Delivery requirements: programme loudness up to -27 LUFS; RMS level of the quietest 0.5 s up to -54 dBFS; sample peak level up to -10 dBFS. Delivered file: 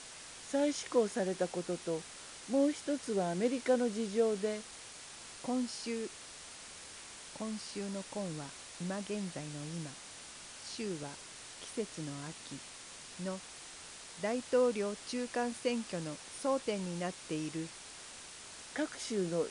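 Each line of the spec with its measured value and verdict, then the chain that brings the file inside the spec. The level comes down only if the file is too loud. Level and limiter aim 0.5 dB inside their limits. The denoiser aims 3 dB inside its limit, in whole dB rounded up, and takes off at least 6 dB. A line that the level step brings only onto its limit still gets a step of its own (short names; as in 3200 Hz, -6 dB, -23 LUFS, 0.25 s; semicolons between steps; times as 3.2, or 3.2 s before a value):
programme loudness -37.5 LUFS: OK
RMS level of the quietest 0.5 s -50 dBFS: fail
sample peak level -18.0 dBFS: OK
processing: denoiser 7 dB, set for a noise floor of -50 dBFS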